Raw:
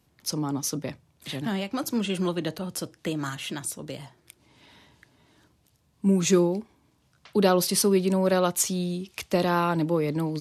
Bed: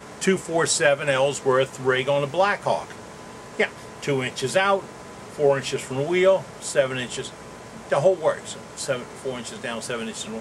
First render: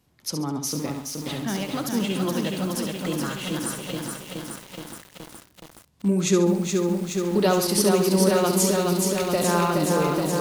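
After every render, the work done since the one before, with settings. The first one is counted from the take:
flutter between parallel walls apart 11.8 metres, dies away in 0.51 s
feedback echo at a low word length 422 ms, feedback 80%, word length 7 bits, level −3.5 dB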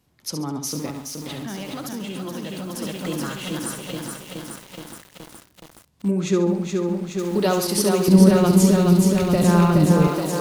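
0:00.90–0:02.82: downward compressor, threshold −27 dBFS
0:06.11–0:07.19: low-pass filter 2,800 Hz 6 dB per octave
0:08.08–0:10.08: bass and treble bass +14 dB, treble −3 dB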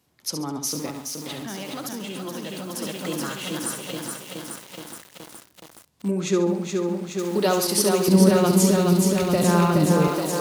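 high-pass filter 64 Hz
bass and treble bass −5 dB, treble +2 dB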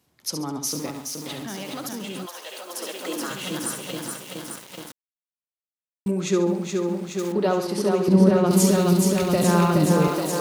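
0:02.25–0:03.29: high-pass filter 680 Hz → 230 Hz 24 dB per octave
0:04.92–0:06.06: silence
0:07.32–0:08.51: low-pass filter 1,400 Hz 6 dB per octave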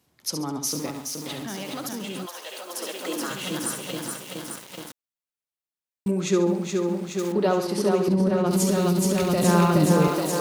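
0:08.03–0:09.45: downward compressor, threshold −17 dBFS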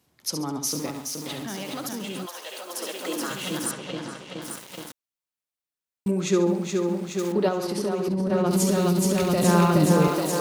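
0:03.71–0:04.42: high-frequency loss of the air 110 metres
0:07.48–0:08.30: downward compressor 3 to 1, threshold −23 dBFS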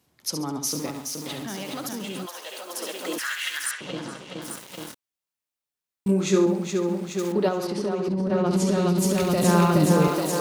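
0:03.18–0:03.81: high-pass with resonance 1,800 Hz, resonance Q 4.1
0:04.78–0:06.46: double-tracking delay 26 ms −4.5 dB
0:07.67–0:08.98: high-frequency loss of the air 60 metres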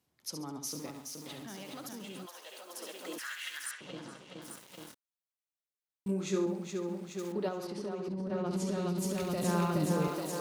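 level −11.5 dB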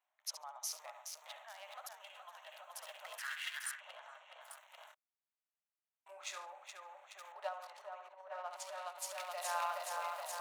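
adaptive Wiener filter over 9 samples
Chebyshev high-pass filter 610 Hz, order 6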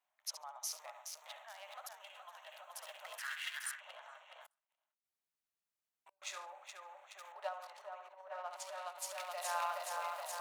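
0:04.46–0:06.22: gate with flip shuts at −50 dBFS, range −35 dB

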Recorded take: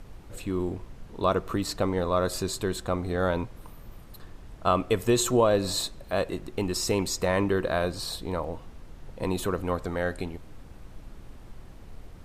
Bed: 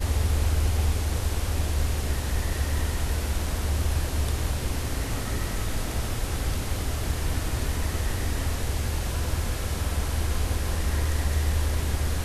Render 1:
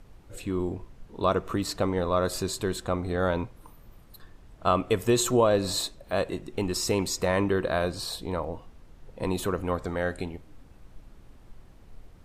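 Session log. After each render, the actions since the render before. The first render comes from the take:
noise reduction from a noise print 6 dB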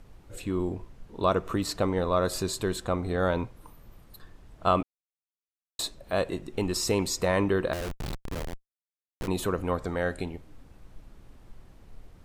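0:04.83–0:05.79: silence
0:07.73–0:09.28: comparator with hysteresis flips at −27.5 dBFS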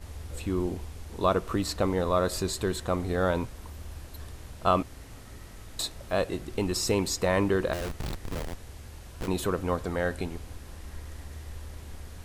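mix in bed −17 dB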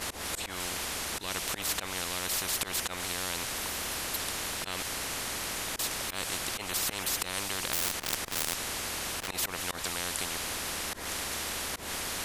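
volume swells 166 ms
every bin compressed towards the loudest bin 10 to 1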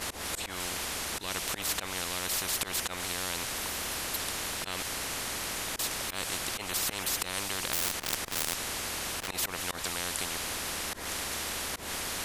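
no processing that can be heard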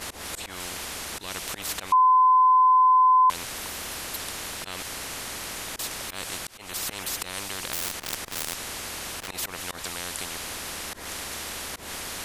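0:01.92–0:03.30: beep over 1,020 Hz −14 dBFS
0:06.47–0:06.90: fade in equal-power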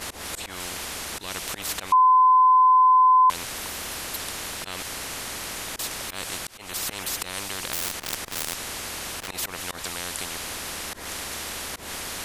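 level +1.5 dB

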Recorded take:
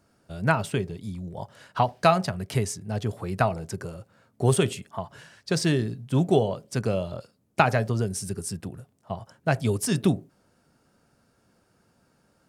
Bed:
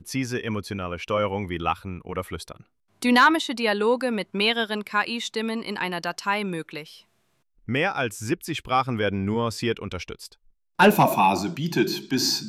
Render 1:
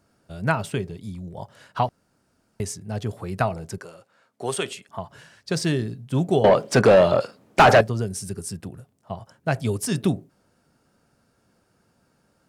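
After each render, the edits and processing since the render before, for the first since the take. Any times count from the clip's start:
0:01.89–0:02.60: fill with room tone
0:03.78–0:04.89: meter weighting curve A
0:06.44–0:07.81: mid-hump overdrive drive 30 dB, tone 1,600 Hz, clips at −3 dBFS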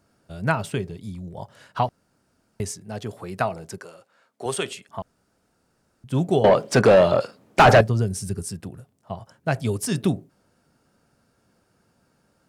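0:02.71–0:04.46: high-pass filter 210 Hz 6 dB per octave
0:05.02–0:06.04: fill with room tone
0:07.65–0:08.43: low-shelf EQ 150 Hz +8 dB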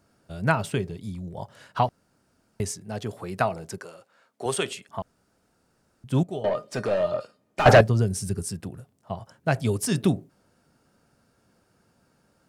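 0:06.23–0:07.66: tuned comb filter 610 Hz, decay 0.19 s, mix 80%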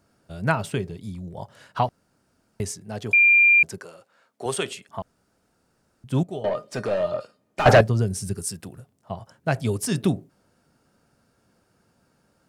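0:03.13–0:03.63: beep over 2,390 Hz −12 dBFS
0:08.33–0:08.78: spectral tilt +1.5 dB per octave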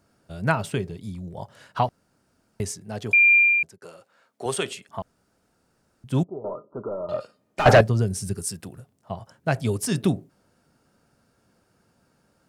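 0:03.35–0:03.82: fade out
0:06.24–0:07.09: Chebyshev low-pass with heavy ripple 1,400 Hz, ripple 9 dB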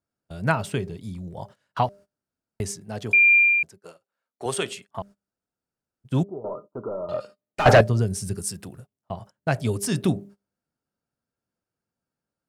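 hum removal 200.4 Hz, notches 3
noise gate −43 dBFS, range −23 dB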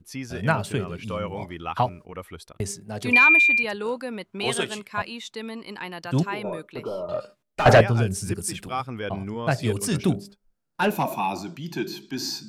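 mix in bed −7 dB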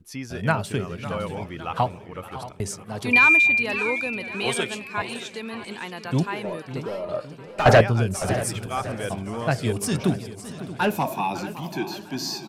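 repeating echo 627 ms, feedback 32%, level −15.5 dB
feedback echo with a swinging delay time 557 ms, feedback 50%, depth 189 cents, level −14.5 dB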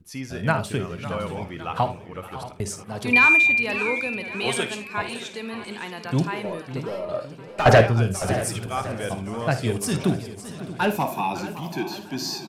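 ambience of single reflections 53 ms −12.5 dB, 77 ms −18 dB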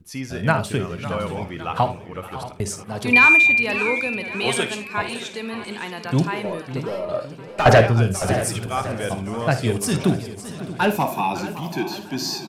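level +3 dB
brickwall limiter −3 dBFS, peak gain reduction 3 dB

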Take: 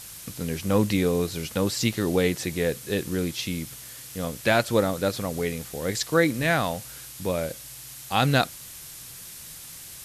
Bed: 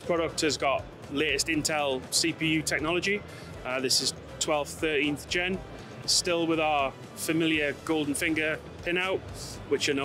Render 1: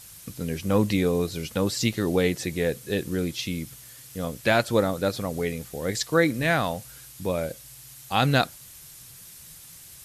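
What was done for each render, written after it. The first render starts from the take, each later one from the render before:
broadband denoise 6 dB, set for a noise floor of −42 dBFS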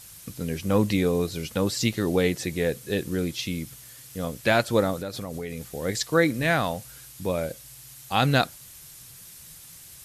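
0:04.97–0:05.74: downward compressor, threshold −29 dBFS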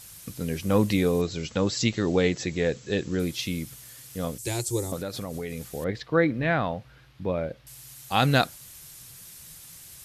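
0:01.21–0:03.20: linear-phase brick-wall low-pass 7,900 Hz
0:04.38–0:04.92: drawn EQ curve 120 Hz 0 dB, 230 Hz −20 dB, 360 Hz +2 dB, 610 Hz −19 dB, 860 Hz −9 dB, 1,400 Hz −22 dB, 2,100 Hz −12 dB, 3,500 Hz −9 dB, 7,700 Hz +12 dB, 14,000 Hz +1 dB
0:05.84–0:07.67: high-frequency loss of the air 330 metres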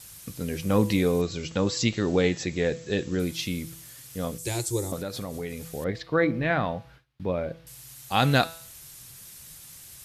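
hum removal 164.5 Hz, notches 32
noise gate with hold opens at −43 dBFS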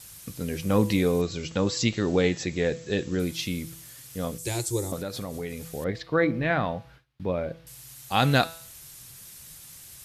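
no processing that can be heard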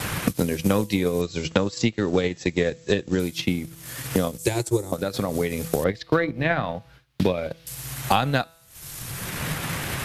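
transient designer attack +9 dB, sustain −10 dB
multiband upward and downward compressor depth 100%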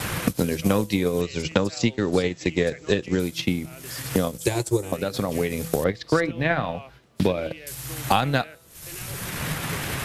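mix in bed −16 dB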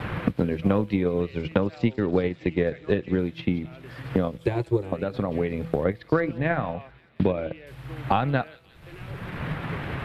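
high-frequency loss of the air 490 metres
delay with a high-pass on its return 178 ms, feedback 71%, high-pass 4,300 Hz, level −10 dB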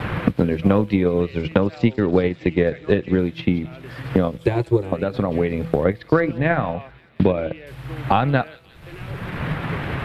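level +5.5 dB
brickwall limiter −3 dBFS, peak gain reduction 1.5 dB

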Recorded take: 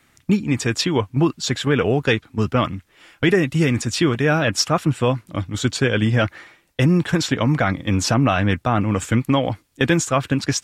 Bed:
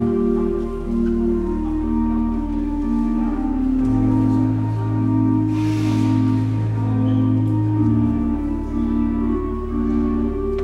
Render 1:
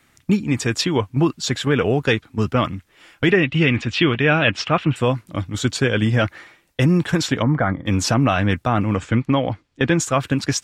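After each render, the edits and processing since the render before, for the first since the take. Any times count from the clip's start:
0:03.30–0:04.96: low-pass with resonance 2,900 Hz, resonance Q 2.7
0:07.42–0:07.86: Savitzky-Golay smoothing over 41 samples
0:08.96–0:10.00: high-frequency loss of the air 130 metres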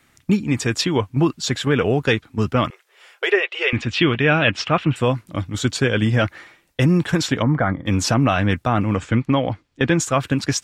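0:02.70–0:03.73: linear-phase brick-wall high-pass 360 Hz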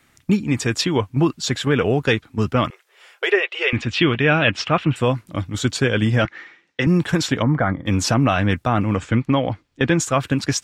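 0:06.25–0:06.87: loudspeaker in its box 210–5,800 Hz, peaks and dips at 630 Hz −9 dB, 1,000 Hz −3 dB, 1,900 Hz +5 dB, 4,500 Hz −4 dB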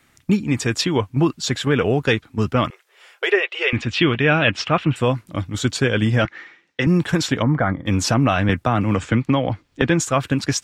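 0:08.49–0:09.82: multiband upward and downward compressor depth 70%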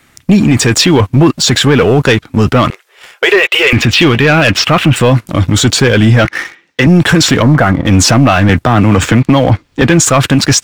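leveller curve on the samples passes 2
boost into a limiter +14 dB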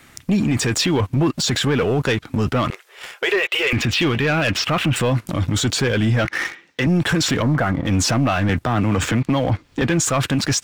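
downward compressor, threshold −12 dBFS, peak gain reduction 8.5 dB
brickwall limiter −12 dBFS, peak gain reduction 9.5 dB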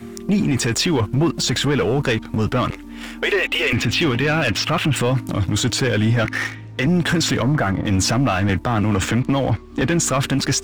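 mix in bed −16 dB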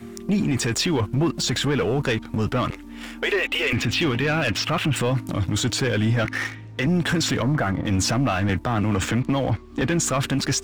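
level −3.5 dB

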